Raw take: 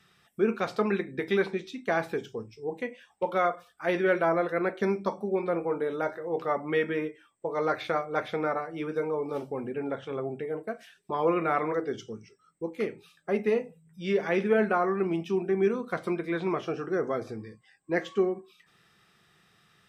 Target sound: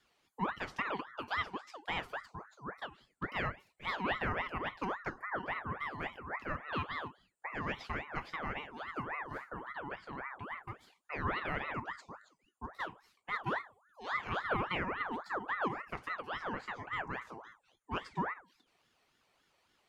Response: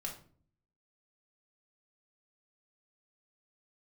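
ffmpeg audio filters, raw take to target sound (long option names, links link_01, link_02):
-af "aeval=exprs='val(0)*sin(2*PI*1100*n/s+1100*0.5/3.6*sin(2*PI*3.6*n/s))':channel_layout=same,volume=-7.5dB"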